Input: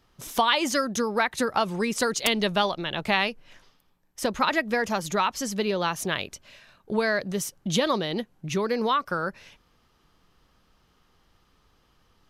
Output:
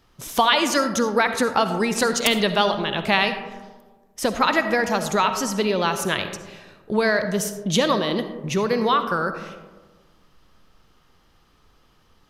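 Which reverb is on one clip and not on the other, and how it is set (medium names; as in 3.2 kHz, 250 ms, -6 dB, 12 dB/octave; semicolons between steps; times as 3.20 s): algorithmic reverb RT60 1.4 s, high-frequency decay 0.3×, pre-delay 25 ms, DRR 8.5 dB; trim +4 dB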